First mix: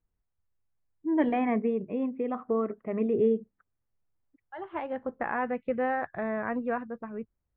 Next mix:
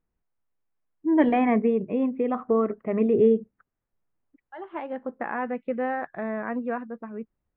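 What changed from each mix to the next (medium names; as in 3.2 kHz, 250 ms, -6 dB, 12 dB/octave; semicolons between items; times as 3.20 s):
first voice +5.5 dB; second voice: add resonant low shelf 150 Hz -9.5 dB, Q 1.5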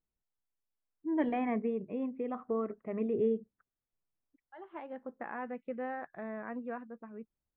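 first voice -11.0 dB; second voice -10.5 dB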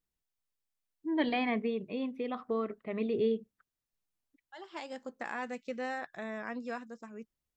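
master: remove Gaussian low-pass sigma 4.5 samples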